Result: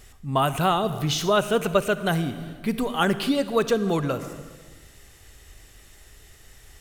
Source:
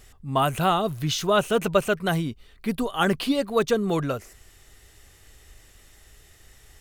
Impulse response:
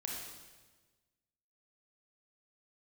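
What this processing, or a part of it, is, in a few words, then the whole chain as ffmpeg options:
ducked reverb: -filter_complex "[0:a]asplit=3[a][b][c];[1:a]atrim=start_sample=2205[d];[b][d]afir=irnorm=-1:irlink=0[e];[c]apad=whole_len=300174[f];[e][f]sidechaincompress=threshold=-26dB:ratio=8:attack=45:release=426,volume=-3dB[g];[a][g]amix=inputs=2:normalize=0,volume=-1.5dB"

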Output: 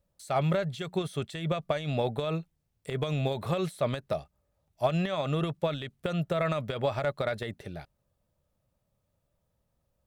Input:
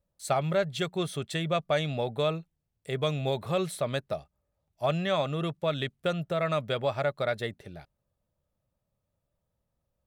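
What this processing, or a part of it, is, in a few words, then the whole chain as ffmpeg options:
de-esser from a sidechain: -filter_complex "[0:a]asplit=2[a][b];[b]highpass=5.1k,apad=whole_len=443818[c];[a][c]sidechaincompress=threshold=-49dB:ratio=8:attack=0.9:release=63,volume=4dB"

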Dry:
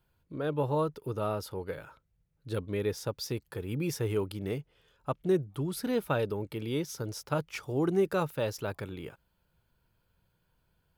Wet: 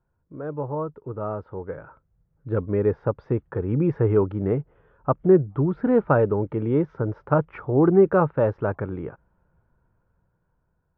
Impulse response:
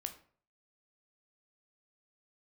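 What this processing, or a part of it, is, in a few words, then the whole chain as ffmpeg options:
action camera in a waterproof case: -af "lowpass=f=1.5k:w=0.5412,lowpass=f=1.5k:w=1.3066,dynaudnorm=f=850:g=5:m=11dB" -ar 22050 -c:a aac -b:a 96k

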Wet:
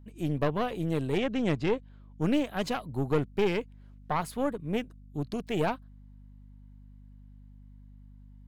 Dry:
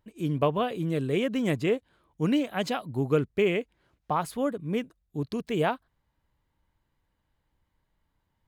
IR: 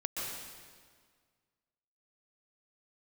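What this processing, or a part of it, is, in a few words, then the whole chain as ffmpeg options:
valve amplifier with mains hum: -filter_complex "[0:a]asettb=1/sr,asplit=3[a][b][c];[a]atrim=end=1.184[d];[b]atrim=start=1.18:end=2.21,asetpts=PTS-STARTPTS,afade=t=in:d=0.004:c=qsin,afade=t=out:st=1.026:d=0.004:c=qsin,lowpass=5.4k[e];[c]atrim=start=2.206[f];[d][e]acrossfade=d=0.004:c1=hsin:c2=qsin[g];[g][f]acrossfade=d=0.004:c1=qsin:c2=hsin,aeval=exprs='(tanh(10*val(0)+0.65)-tanh(0.65))/10':c=same,aeval=exprs='val(0)+0.00282*(sin(2*PI*50*n/s)+sin(2*PI*2*50*n/s)/2+sin(2*PI*3*50*n/s)/3+sin(2*PI*4*50*n/s)/4+sin(2*PI*5*50*n/s)/5)':c=same,volume=1.5dB"

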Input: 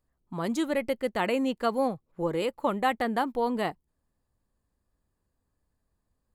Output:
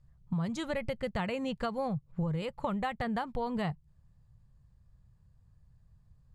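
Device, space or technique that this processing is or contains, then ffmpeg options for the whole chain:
jukebox: -af "lowpass=7.1k,lowshelf=f=200:t=q:w=3:g=12.5,acompressor=threshold=-33dB:ratio=6,volume=2.5dB"

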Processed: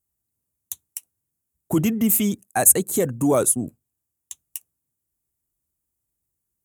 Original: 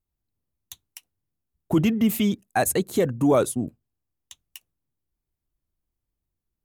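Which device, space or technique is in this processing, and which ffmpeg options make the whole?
budget condenser microphone: -af "highpass=62,highshelf=f=5.9k:t=q:w=1.5:g=11"

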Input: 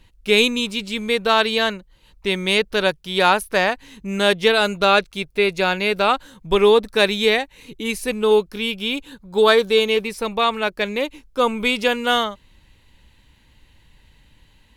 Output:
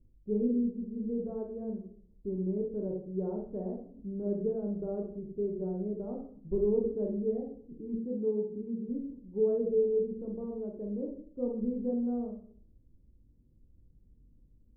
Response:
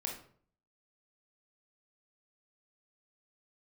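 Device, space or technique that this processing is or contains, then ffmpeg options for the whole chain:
next room: -filter_complex "[0:a]lowpass=f=400:w=0.5412,lowpass=f=400:w=1.3066[a];[1:a]atrim=start_sample=2205[b];[a][b]afir=irnorm=-1:irlink=0,asettb=1/sr,asplit=3[c][d][e];[c]atrim=end=7.984[f];[d]atrim=start=7.98:end=8.89,asetpts=PTS-STARTPTS,afade=t=in:d=0.004:c=qsin,afade=t=out:st=0.906:d=0.004:c=qsin,highpass=90[g];[e]atrim=start=8.886[h];[f][g]acrossfade=d=0.004:c1=hsin:c2=qsin[i];[i][h]acrossfade=d=0.004:c1=qsin:c2=hsin,volume=-8.5dB"

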